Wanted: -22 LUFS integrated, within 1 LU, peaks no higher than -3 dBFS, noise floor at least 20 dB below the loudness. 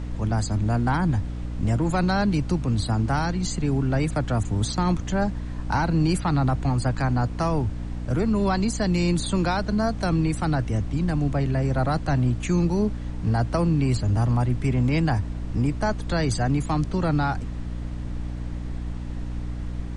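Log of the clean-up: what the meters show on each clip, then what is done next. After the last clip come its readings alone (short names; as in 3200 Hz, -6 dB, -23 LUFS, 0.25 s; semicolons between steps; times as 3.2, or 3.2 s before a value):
hum 60 Hz; harmonics up to 300 Hz; hum level -29 dBFS; noise floor -31 dBFS; noise floor target -45 dBFS; loudness -24.5 LUFS; peak -11.5 dBFS; loudness target -22.0 LUFS
-> de-hum 60 Hz, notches 5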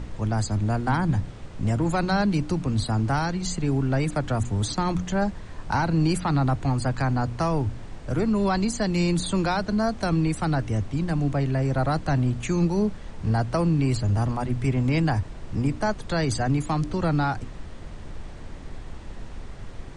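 hum none; noise floor -39 dBFS; noise floor target -45 dBFS
-> noise print and reduce 6 dB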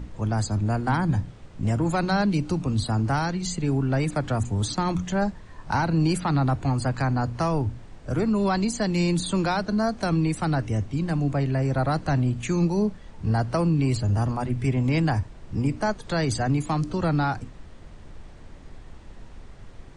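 noise floor -45 dBFS; loudness -25.0 LUFS; peak -12.0 dBFS; loudness target -22.0 LUFS
-> gain +3 dB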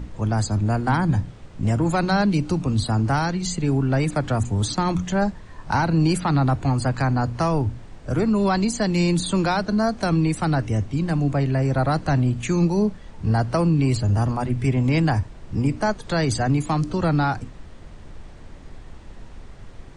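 loudness -22.0 LUFS; peak -9.0 dBFS; noise floor -42 dBFS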